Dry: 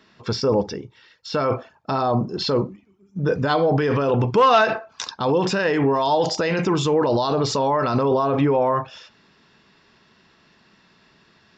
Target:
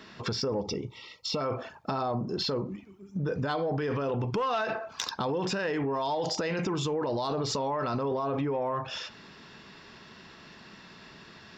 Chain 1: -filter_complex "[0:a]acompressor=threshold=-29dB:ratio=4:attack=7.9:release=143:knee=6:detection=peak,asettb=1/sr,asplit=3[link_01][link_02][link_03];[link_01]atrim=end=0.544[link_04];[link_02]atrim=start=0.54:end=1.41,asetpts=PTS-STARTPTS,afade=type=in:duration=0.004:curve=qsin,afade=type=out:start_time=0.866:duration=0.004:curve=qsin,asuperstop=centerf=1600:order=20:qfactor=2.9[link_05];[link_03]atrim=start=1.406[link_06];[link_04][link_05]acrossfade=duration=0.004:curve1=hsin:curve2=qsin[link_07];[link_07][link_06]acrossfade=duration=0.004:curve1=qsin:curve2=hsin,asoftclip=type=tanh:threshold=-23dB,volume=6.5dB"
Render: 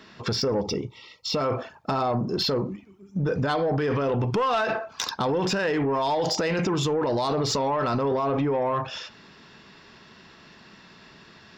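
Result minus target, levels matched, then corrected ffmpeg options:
downward compressor: peak gain reduction −6.5 dB
-filter_complex "[0:a]acompressor=threshold=-37.5dB:ratio=4:attack=7.9:release=143:knee=6:detection=peak,asettb=1/sr,asplit=3[link_01][link_02][link_03];[link_01]atrim=end=0.544[link_04];[link_02]atrim=start=0.54:end=1.41,asetpts=PTS-STARTPTS,afade=type=in:duration=0.004:curve=qsin,afade=type=out:start_time=0.866:duration=0.004:curve=qsin,asuperstop=centerf=1600:order=20:qfactor=2.9[link_05];[link_03]atrim=start=1.406[link_06];[link_04][link_05]acrossfade=duration=0.004:curve1=hsin:curve2=qsin[link_07];[link_07][link_06]acrossfade=duration=0.004:curve1=qsin:curve2=hsin,asoftclip=type=tanh:threshold=-23dB,volume=6.5dB"

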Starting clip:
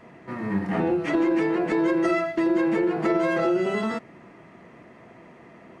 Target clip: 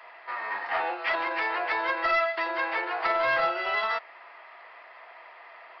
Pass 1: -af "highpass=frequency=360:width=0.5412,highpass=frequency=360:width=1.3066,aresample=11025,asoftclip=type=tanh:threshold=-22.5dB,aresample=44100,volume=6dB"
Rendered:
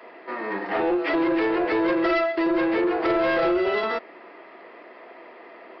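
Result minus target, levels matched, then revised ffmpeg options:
500 Hz band +4.5 dB
-af "highpass=frequency=760:width=0.5412,highpass=frequency=760:width=1.3066,aresample=11025,asoftclip=type=tanh:threshold=-22.5dB,aresample=44100,volume=6dB"

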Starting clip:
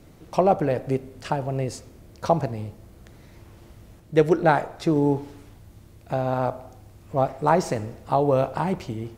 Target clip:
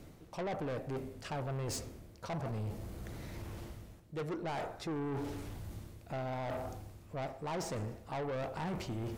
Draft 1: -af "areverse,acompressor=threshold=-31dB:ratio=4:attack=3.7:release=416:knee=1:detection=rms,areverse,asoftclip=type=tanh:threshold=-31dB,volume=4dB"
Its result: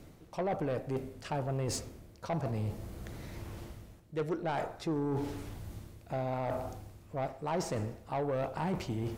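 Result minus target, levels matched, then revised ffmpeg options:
soft clipping: distortion −6 dB
-af "areverse,acompressor=threshold=-31dB:ratio=4:attack=3.7:release=416:knee=1:detection=rms,areverse,asoftclip=type=tanh:threshold=-38.5dB,volume=4dB"

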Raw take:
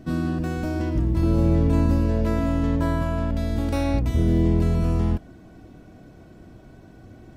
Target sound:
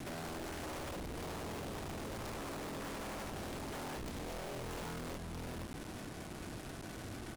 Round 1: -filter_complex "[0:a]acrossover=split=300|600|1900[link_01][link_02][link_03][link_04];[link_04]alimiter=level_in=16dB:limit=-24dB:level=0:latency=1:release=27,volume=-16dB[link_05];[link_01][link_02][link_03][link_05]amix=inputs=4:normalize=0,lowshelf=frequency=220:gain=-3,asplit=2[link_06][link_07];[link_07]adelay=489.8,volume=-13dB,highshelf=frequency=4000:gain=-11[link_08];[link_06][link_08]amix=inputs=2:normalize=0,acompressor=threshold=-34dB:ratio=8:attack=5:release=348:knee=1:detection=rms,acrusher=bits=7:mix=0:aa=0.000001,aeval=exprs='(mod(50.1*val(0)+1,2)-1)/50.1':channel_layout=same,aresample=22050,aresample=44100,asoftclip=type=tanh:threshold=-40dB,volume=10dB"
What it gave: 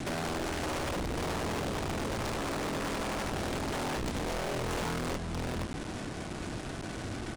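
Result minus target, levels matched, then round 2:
soft clipping: distortion −6 dB
-filter_complex "[0:a]acrossover=split=300|600|1900[link_01][link_02][link_03][link_04];[link_04]alimiter=level_in=16dB:limit=-24dB:level=0:latency=1:release=27,volume=-16dB[link_05];[link_01][link_02][link_03][link_05]amix=inputs=4:normalize=0,lowshelf=frequency=220:gain=-3,asplit=2[link_06][link_07];[link_07]adelay=489.8,volume=-13dB,highshelf=frequency=4000:gain=-11[link_08];[link_06][link_08]amix=inputs=2:normalize=0,acompressor=threshold=-34dB:ratio=8:attack=5:release=348:knee=1:detection=rms,acrusher=bits=7:mix=0:aa=0.000001,aeval=exprs='(mod(50.1*val(0)+1,2)-1)/50.1':channel_layout=same,aresample=22050,aresample=44100,asoftclip=type=tanh:threshold=-51.5dB,volume=10dB"

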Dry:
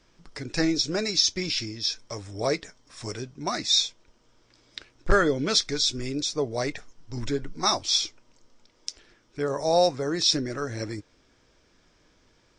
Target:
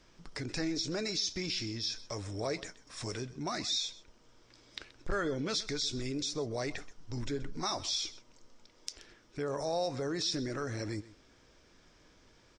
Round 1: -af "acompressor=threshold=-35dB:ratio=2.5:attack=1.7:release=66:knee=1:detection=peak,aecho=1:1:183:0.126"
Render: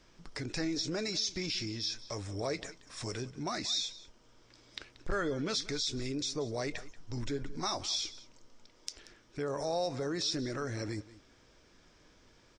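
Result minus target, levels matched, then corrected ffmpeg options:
echo 55 ms late
-af "acompressor=threshold=-35dB:ratio=2.5:attack=1.7:release=66:knee=1:detection=peak,aecho=1:1:128:0.126"

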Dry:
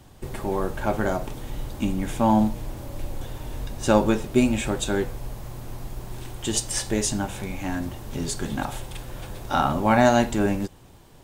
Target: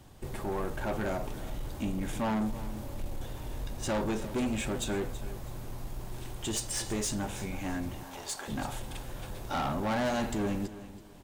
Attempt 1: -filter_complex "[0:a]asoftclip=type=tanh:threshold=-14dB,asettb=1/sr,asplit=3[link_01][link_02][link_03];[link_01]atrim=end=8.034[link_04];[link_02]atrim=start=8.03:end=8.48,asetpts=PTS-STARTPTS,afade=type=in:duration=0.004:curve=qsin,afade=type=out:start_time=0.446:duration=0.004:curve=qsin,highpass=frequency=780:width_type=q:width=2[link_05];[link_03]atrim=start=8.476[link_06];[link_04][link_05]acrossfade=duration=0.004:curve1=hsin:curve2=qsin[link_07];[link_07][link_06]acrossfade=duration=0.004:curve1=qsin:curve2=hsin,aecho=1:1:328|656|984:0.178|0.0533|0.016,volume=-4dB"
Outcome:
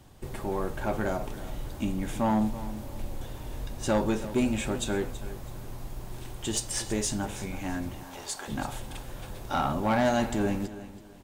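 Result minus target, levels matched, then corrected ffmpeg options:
soft clipping: distortion −8 dB
-filter_complex "[0:a]asoftclip=type=tanh:threshold=-23dB,asettb=1/sr,asplit=3[link_01][link_02][link_03];[link_01]atrim=end=8.034[link_04];[link_02]atrim=start=8.03:end=8.48,asetpts=PTS-STARTPTS,afade=type=in:duration=0.004:curve=qsin,afade=type=out:start_time=0.446:duration=0.004:curve=qsin,highpass=frequency=780:width_type=q:width=2[link_05];[link_03]atrim=start=8.476[link_06];[link_04][link_05]acrossfade=duration=0.004:curve1=hsin:curve2=qsin[link_07];[link_07][link_06]acrossfade=duration=0.004:curve1=qsin:curve2=hsin,aecho=1:1:328|656|984:0.178|0.0533|0.016,volume=-4dB"

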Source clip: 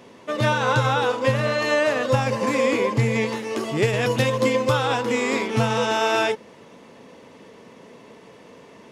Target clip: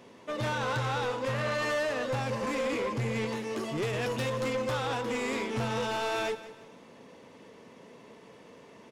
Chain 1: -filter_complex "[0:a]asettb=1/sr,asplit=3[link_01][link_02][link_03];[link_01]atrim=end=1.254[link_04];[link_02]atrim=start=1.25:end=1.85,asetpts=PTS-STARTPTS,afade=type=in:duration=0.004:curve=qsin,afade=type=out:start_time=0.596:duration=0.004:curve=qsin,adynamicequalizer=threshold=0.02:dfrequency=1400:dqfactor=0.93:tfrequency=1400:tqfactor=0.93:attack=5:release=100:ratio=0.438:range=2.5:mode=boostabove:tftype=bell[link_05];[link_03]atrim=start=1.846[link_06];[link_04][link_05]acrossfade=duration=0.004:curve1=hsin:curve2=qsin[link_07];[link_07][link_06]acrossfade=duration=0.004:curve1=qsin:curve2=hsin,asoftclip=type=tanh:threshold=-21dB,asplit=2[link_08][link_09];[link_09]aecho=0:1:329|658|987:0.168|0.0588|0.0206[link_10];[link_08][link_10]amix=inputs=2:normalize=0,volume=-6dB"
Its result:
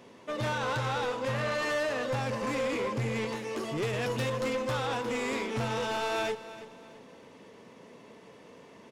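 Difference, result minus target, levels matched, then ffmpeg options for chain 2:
echo 150 ms late
-filter_complex "[0:a]asettb=1/sr,asplit=3[link_01][link_02][link_03];[link_01]atrim=end=1.254[link_04];[link_02]atrim=start=1.25:end=1.85,asetpts=PTS-STARTPTS,afade=type=in:duration=0.004:curve=qsin,afade=type=out:start_time=0.596:duration=0.004:curve=qsin,adynamicequalizer=threshold=0.02:dfrequency=1400:dqfactor=0.93:tfrequency=1400:tqfactor=0.93:attack=5:release=100:ratio=0.438:range=2.5:mode=boostabove:tftype=bell[link_05];[link_03]atrim=start=1.846[link_06];[link_04][link_05]acrossfade=duration=0.004:curve1=hsin:curve2=qsin[link_07];[link_07][link_06]acrossfade=duration=0.004:curve1=qsin:curve2=hsin,asoftclip=type=tanh:threshold=-21dB,asplit=2[link_08][link_09];[link_09]aecho=0:1:179|358|537:0.168|0.0588|0.0206[link_10];[link_08][link_10]amix=inputs=2:normalize=0,volume=-6dB"

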